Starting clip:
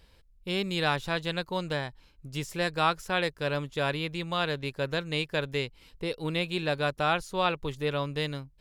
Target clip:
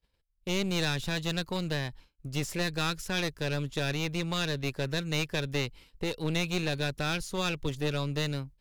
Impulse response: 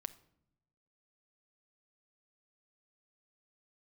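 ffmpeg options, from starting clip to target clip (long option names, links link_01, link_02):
-filter_complex "[0:a]agate=range=-33dB:threshold=-45dB:ratio=3:detection=peak,acrossover=split=350|1900[link_01][link_02][link_03];[link_02]acompressor=threshold=-40dB:ratio=6[link_04];[link_01][link_04][link_03]amix=inputs=3:normalize=0,aeval=exprs='clip(val(0),-1,0.0119)':channel_layout=same,volume=4.5dB"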